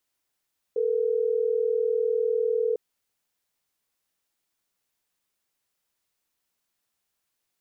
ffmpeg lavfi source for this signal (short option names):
-f lavfi -i "aevalsrc='0.0596*(sin(2*PI*440*t)+sin(2*PI*480*t))*clip(min(mod(t,6),2-mod(t,6))/0.005,0,1)':d=3.12:s=44100"